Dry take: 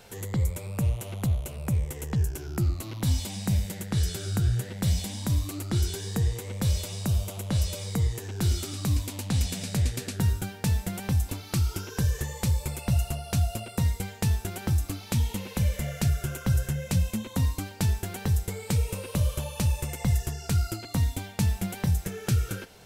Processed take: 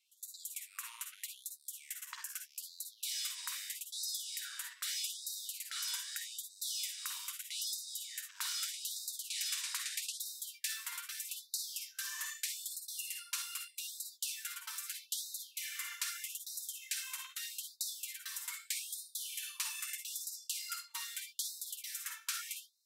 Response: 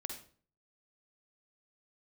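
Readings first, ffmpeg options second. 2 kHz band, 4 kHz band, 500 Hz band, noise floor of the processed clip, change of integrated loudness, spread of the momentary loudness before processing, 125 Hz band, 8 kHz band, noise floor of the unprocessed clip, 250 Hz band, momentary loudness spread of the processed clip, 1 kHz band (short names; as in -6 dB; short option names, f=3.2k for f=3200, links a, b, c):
-5.0 dB, -1.0 dB, under -40 dB, -65 dBFS, -11.0 dB, 2 LU, under -40 dB, -1.0 dB, -44 dBFS, under -40 dB, 6 LU, -13.0 dB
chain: -filter_complex "[0:a]agate=range=-20dB:threshold=-34dB:ratio=16:detection=peak[a];[1:a]atrim=start_sample=2205,afade=t=out:st=0.39:d=0.01,atrim=end_sample=17640,atrim=end_sample=3528[b];[a][b]afir=irnorm=-1:irlink=0,afftfilt=real='re*gte(b*sr/1024,900*pow(3700/900,0.5+0.5*sin(2*PI*0.8*pts/sr)))':imag='im*gte(b*sr/1024,900*pow(3700/900,0.5+0.5*sin(2*PI*0.8*pts/sr)))':win_size=1024:overlap=0.75,volume=1.5dB"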